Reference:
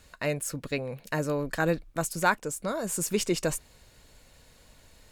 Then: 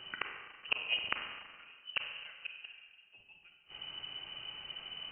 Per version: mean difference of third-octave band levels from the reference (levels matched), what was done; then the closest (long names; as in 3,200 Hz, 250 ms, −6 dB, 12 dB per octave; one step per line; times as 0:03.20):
18.5 dB: gate with flip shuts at −24 dBFS, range −40 dB
four-comb reverb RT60 1.5 s, combs from 32 ms, DRR 3 dB
voice inversion scrambler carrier 3,000 Hz
level +6.5 dB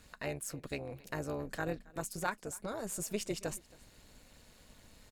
4.5 dB: downward compressor 1.5 to 1, threshold −43 dBFS, peak gain reduction 9 dB
amplitude modulation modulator 210 Hz, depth 55%
on a send: single-tap delay 272 ms −23.5 dB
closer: second